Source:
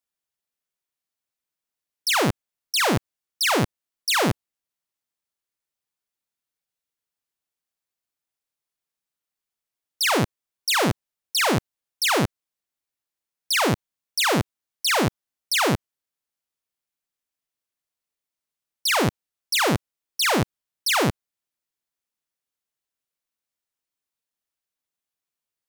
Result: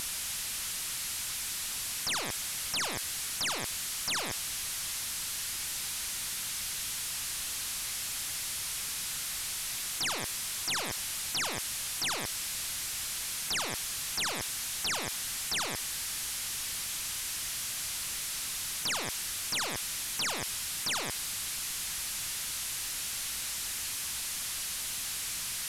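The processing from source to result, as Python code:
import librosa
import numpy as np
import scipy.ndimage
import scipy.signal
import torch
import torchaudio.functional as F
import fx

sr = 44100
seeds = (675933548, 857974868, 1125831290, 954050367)

y = fx.delta_mod(x, sr, bps=64000, step_db=-43.0)
y = fx.peak_eq(y, sr, hz=470.0, db=-14.0, octaves=2.7)
y = fx.spectral_comp(y, sr, ratio=10.0)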